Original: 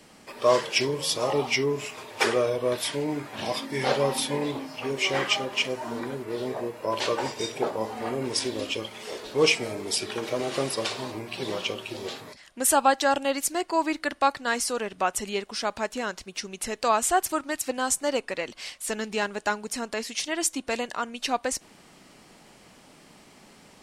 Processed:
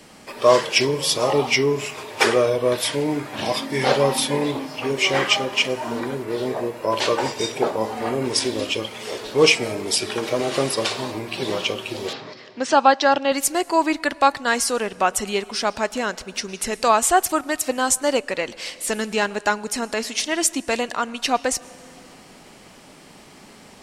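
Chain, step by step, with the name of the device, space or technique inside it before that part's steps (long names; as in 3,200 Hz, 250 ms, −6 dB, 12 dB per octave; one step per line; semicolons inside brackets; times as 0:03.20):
compressed reverb return (on a send at −8.5 dB: convolution reverb RT60 1.4 s, pre-delay 103 ms + downward compressor 10 to 1, threshold −38 dBFS, peak gain reduction 23 dB)
0:12.13–0:13.32: on the sum: elliptic band-pass filter 120–5,300 Hz, stop band 40 dB
level +6 dB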